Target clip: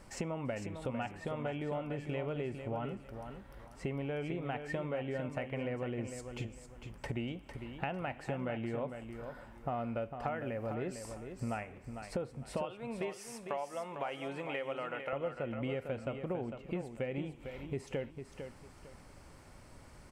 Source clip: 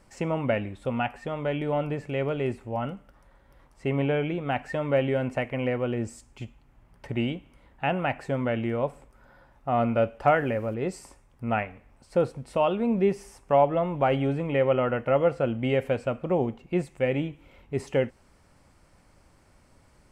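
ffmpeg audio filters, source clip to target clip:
-filter_complex "[0:a]asettb=1/sr,asplit=3[a][b][c];[a]atrim=end=12.654[d];[b]atrim=start=12.65:end=15.13,asetpts=PTS-STARTPTS,afade=t=in:d=0.004:c=qsin,afade=t=out:st=2.476:d=0.004:c=qsin,highpass=f=1.3k:p=1[e];[c]atrim=start=15.126[f];[d][e]acrossfade=d=0.004:c1=hsin:c2=qsin[g];[g][f]acrossfade=d=0.004:c1=qsin:c2=hsin,acompressor=threshold=-39dB:ratio=6,aecho=1:1:452|904|1356:0.398|0.107|0.029,volume=3dB"

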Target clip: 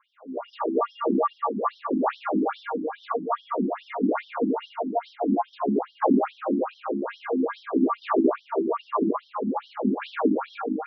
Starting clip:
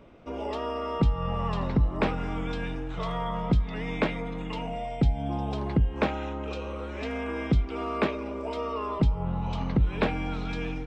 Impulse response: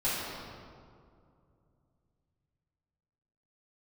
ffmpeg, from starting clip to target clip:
-filter_complex "[0:a]highshelf=f=1.7k:t=q:w=1.5:g=-7.5,aeval=exprs='val(0)+0.00794*(sin(2*PI*50*n/s)+sin(2*PI*2*50*n/s)/2+sin(2*PI*3*50*n/s)/3+sin(2*PI*4*50*n/s)/4+sin(2*PI*5*50*n/s)/5)':c=same,acrossover=split=150[a][b];[a]asoftclip=type=hard:threshold=-28dB[c];[c][b]amix=inputs=2:normalize=0[d];[1:a]atrim=start_sample=2205,asetrate=48510,aresample=44100[e];[d][e]afir=irnorm=-1:irlink=0,afftfilt=real='re*between(b*sr/1024,250*pow(4300/250,0.5+0.5*sin(2*PI*2.4*pts/sr))/1.41,250*pow(4300/250,0.5+0.5*sin(2*PI*2.4*pts/sr))*1.41)':imag='im*between(b*sr/1024,250*pow(4300/250,0.5+0.5*sin(2*PI*2.4*pts/sr))/1.41,250*pow(4300/250,0.5+0.5*sin(2*PI*2.4*pts/sr))*1.41)':win_size=1024:overlap=0.75,volume=2.5dB"

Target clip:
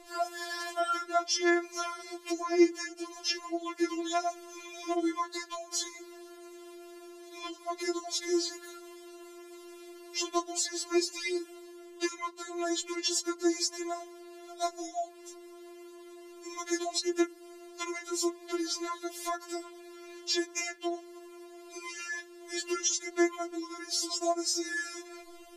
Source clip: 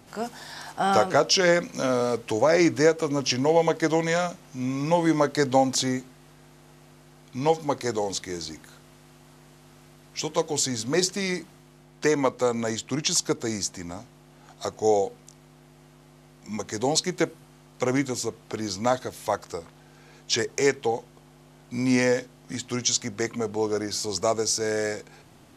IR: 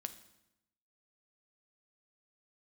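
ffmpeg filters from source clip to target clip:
-af "acompressor=threshold=-29dB:ratio=6,afftfilt=real='re*4*eq(mod(b,16),0)':imag='im*4*eq(mod(b,16),0)':win_size=2048:overlap=0.75,volume=4dB"

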